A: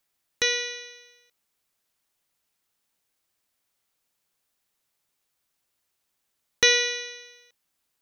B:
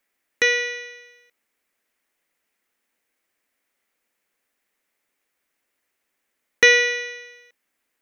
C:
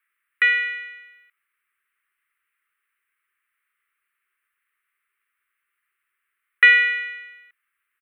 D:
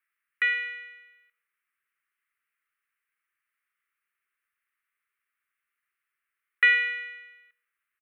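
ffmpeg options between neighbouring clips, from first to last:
-af "equalizer=f=125:t=o:w=1:g=-10,equalizer=f=250:t=o:w=1:g=8,equalizer=f=500:t=o:w=1:g=6,equalizer=f=2k:t=o:w=1:g=11,equalizer=f=4k:t=o:w=1:g=-4,volume=-1dB"
-af "firequalizer=gain_entry='entry(120,0);entry(220,-30);entry(380,-1);entry(590,-26);entry(1200,14);entry(2800,8);entry(5900,-26);entry(8500,4)':delay=0.05:min_phase=1,volume=-8.5dB"
-filter_complex "[0:a]asplit=2[a][b];[b]adelay=120,lowpass=f=2k:p=1,volume=-17dB,asplit=2[c][d];[d]adelay=120,lowpass=f=2k:p=1,volume=0.36,asplit=2[e][f];[f]adelay=120,lowpass=f=2k:p=1,volume=0.36[g];[a][c][e][g]amix=inputs=4:normalize=0,volume=-7dB"

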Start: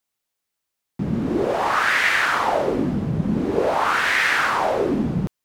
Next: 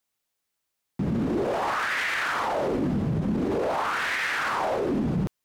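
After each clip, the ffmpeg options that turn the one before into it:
-af "alimiter=limit=-19dB:level=0:latency=1:release=20"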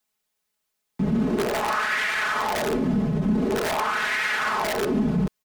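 -filter_complex "[0:a]aecho=1:1:4.7:0.86,acrossover=split=390|920[a][b][c];[b]aeval=exprs='(mod(14.1*val(0)+1,2)-1)/14.1':c=same[d];[a][d][c]amix=inputs=3:normalize=0"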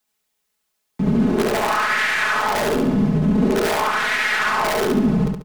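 -af "aeval=exprs='0.224*(cos(1*acos(clip(val(0)/0.224,-1,1)))-cos(1*PI/2))+0.00631*(cos(4*acos(clip(val(0)/0.224,-1,1)))-cos(4*PI/2))':c=same,aecho=1:1:70|140|210|280|350:0.668|0.241|0.0866|0.0312|0.0112,volume=3dB"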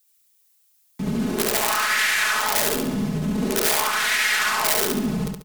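-af "crystalizer=i=5.5:c=0,volume=-7dB"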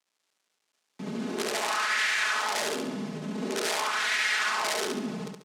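-af "acrusher=bits=8:mix=0:aa=0.000001,highpass=250,lowpass=7k,volume=-5.5dB"

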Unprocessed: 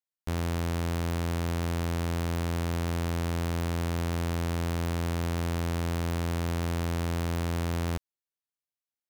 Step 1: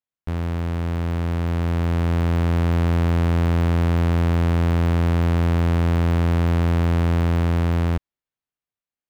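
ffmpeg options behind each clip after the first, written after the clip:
-af "bass=f=250:g=4,treble=f=4k:g=-12,dynaudnorm=f=710:g=5:m=6dB,volume=2dB"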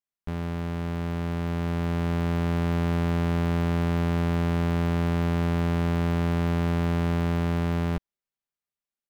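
-af "aecho=1:1:5:0.48,volume=-4.5dB"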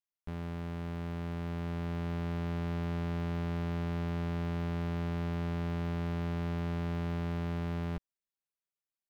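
-af "asoftclip=type=tanh:threshold=-20.5dB,volume=-7.5dB"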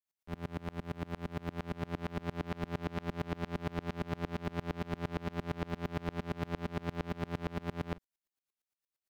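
-filter_complex "[0:a]acrossover=split=210|1400[a][b][c];[a]alimiter=level_in=16.5dB:limit=-24dB:level=0:latency=1,volume=-16.5dB[d];[d][b][c]amix=inputs=3:normalize=0,aeval=exprs='val(0)*pow(10,-30*if(lt(mod(-8.7*n/s,1),2*abs(-8.7)/1000),1-mod(-8.7*n/s,1)/(2*abs(-8.7)/1000),(mod(-8.7*n/s,1)-2*abs(-8.7)/1000)/(1-2*abs(-8.7)/1000))/20)':c=same,volume=9dB"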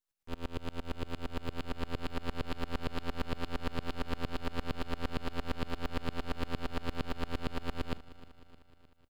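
-af "aeval=exprs='abs(val(0))':c=same,aecho=1:1:308|616|924|1232|1540:0.133|0.0773|0.0449|0.026|0.0151,volume=3.5dB"

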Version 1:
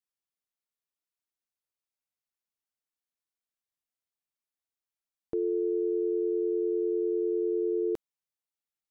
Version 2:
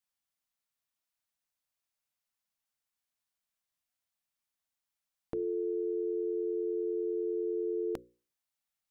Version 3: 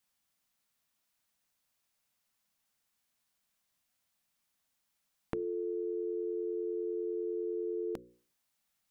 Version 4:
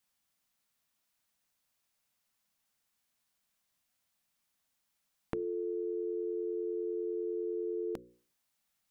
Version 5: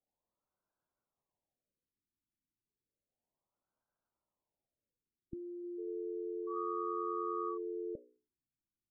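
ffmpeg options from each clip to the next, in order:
-af "equalizer=f=390:t=o:w=0.45:g=-13.5,bandreject=f=60:t=h:w=6,bandreject=f=120:t=h:w=6,bandreject=f=180:t=h:w=6,bandreject=f=240:t=h:w=6,bandreject=f=300:t=h:w=6,bandreject=f=360:t=h:w=6,bandreject=f=420:t=h:w=6,bandreject=f=480:t=h:w=6,bandreject=f=540:t=h:w=6,volume=4dB"
-af "equalizer=f=200:t=o:w=0.77:g=4.5,acompressor=threshold=-42dB:ratio=6,volume=8dB"
-af anull
-af "lowpass=2.2k,aeval=exprs='val(0)*sin(2*PI*790*n/s)':c=same,afftfilt=real='re*lt(b*sr/1024,370*pow(1700/370,0.5+0.5*sin(2*PI*0.32*pts/sr)))':imag='im*lt(b*sr/1024,370*pow(1700/370,0.5+0.5*sin(2*PI*0.32*pts/sr)))':win_size=1024:overlap=0.75,volume=1.5dB"

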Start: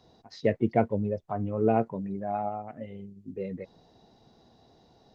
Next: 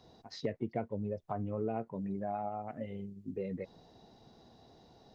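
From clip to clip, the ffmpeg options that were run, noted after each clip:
-af "acompressor=threshold=-34dB:ratio=4"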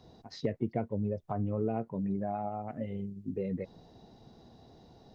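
-af "lowshelf=f=370:g=6.5"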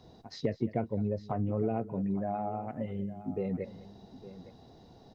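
-af "aecho=1:1:204|861:0.119|0.168,volume=1dB"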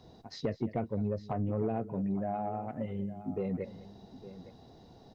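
-af "asoftclip=type=tanh:threshold=-22dB"

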